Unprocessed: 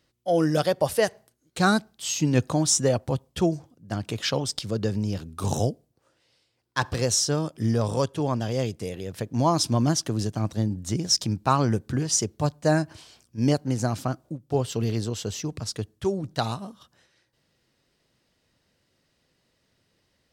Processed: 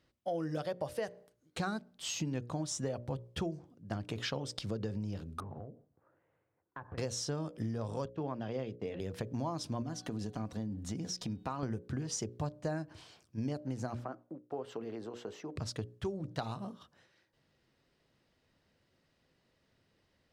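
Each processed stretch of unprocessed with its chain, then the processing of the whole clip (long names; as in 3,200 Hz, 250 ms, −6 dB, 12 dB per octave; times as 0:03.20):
0:05.40–0:06.98: low-pass filter 1,700 Hz 24 dB per octave + downward compressor 16 to 1, threshold −38 dBFS
0:08.05–0:09.00: noise gate −41 dBFS, range −27 dB + band-pass filter 140–3,500 Hz
0:09.82–0:11.63: comb filter 4.1 ms, depth 34% + hum removal 372.8 Hz, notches 12 + downward compressor 2 to 1, threshold −33 dBFS
0:13.95–0:15.56: noise gate −59 dBFS, range −8 dB + downward compressor 2 to 1, threshold −31 dBFS + three-way crossover with the lows and the highs turned down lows −22 dB, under 260 Hz, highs −14 dB, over 2,100 Hz
whole clip: high-shelf EQ 4,800 Hz −11.5 dB; mains-hum notches 60/120/180/240/300/360/420/480/540/600 Hz; downward compressor 6 to 1, threshold −32 dBFS; level −2 dB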